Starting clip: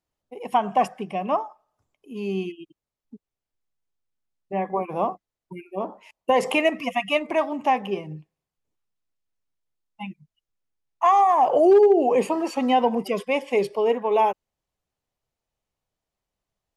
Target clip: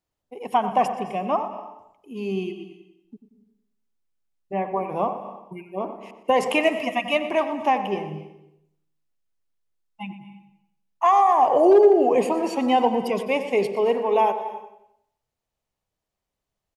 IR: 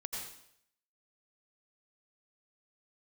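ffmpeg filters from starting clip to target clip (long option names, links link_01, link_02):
-filter_complex "[0:a]asplit=2[link_01][link_02];[link_02]adelay=91,lowpass=frequency=1500:poles=1,volume=-10dB,asplit=2[link_03][link_04];[link_04]adelay=91,lowpass=frequency=1500:poles=1,volume=0.47,asplit=2[link_05][link_06];[link_06]adelay=91,lowpass=frequency=1500:poles=1,volume=0.47,asplit=2[link_07][link_08];[link_08]adelay=91,lowpass=frequency=1500:poles=1,volume=0.47,asplit=2[link_09][link_10];[link_10]adelay=91,lowpass=frequency=1500:poles=1,volume=0.47[link_11];[link_01][link_03][link_05][link_07][link_09][link_11]amix=inputs=6:normalize=0,asplit=2[link_12][link_13];[1:a]atrim=start_sample=2205,adelay=121[link_14];[link_13][link_14]afir=irnorm=-1:irlink=0,volume=-12.5dB[link_15];[link_12][link_15]amix=inputs=2:normalize=0"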